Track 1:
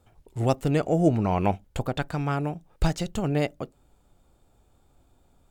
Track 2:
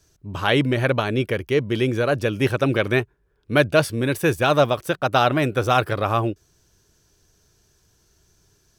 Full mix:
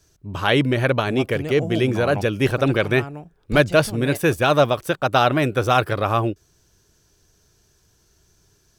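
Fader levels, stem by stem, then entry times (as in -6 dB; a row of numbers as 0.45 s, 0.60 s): -6.5 dB, +1.0 dB; 0.70 s, 0.00 s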